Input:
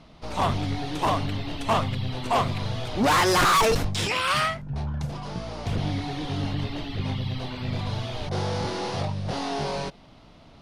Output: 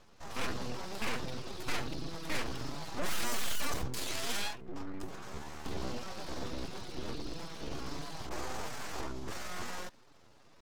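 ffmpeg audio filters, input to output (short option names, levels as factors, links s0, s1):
-af "aeval=exprs='abs(val(0))':c=same,asetrate=57191,aresample=44100,atempo=0.771105,volume=0.398"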